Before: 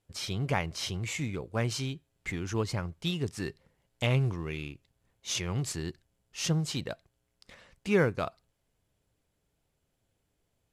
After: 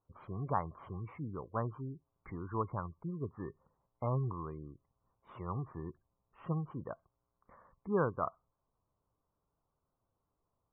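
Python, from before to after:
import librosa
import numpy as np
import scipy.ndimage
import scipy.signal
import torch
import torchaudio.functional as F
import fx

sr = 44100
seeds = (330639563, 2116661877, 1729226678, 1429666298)

y = fx.ladder_lowpass(x, sr, hz=1200.0, resonance_pct=70)
y = fx.spec_gate(y, sr, threshold_db=-25, keep='strong')
y = F.gain(torch.from_numpy(y), 4.0).numpy()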